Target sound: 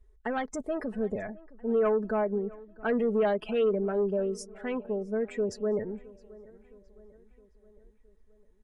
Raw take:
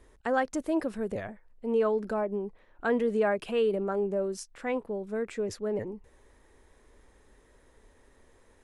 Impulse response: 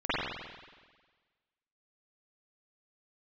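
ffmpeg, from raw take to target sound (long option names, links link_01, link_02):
-filter_complex "[0:a]asoftclip=type=tanh:threshold=-22.5dB,aecho=1:1:4.7:0.52,afftdn=noise_reduction=20:noise_floor=-45,asplit=2[link_01][link_02];[link_02]adelay=665,lowpass=frequency=4200:poles=1,volume=-21.5dB,asplit=2[link_03][link_04];[link_04]adelay=665,lowpass=frequency=4200:poles=1,volume=0.55,asplit=2[link_05][link_06];[link_06]adelay=665,lowpass=frequency=4200:poles=1,volume=0.55,asplit=2[link_07][link_08];[link_08]adelay=665,lowpass=frequency=4200:poles=1,volume=0.55[link_09];[link_03][link_05][link_07][link_09]amix=inputs=4:normalize=0[link_10];[link_01][link_10]amix=inputs=2:normalize=0"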